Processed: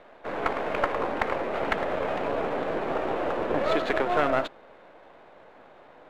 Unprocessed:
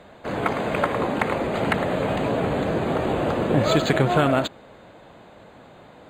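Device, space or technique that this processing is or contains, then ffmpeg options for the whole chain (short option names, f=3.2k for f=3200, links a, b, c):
crystal radio: -af "highpass=370,lowpass=2.5k,aeval=exprs='if(lt(val(0),0),0.447*val(0),val(0))':c=same"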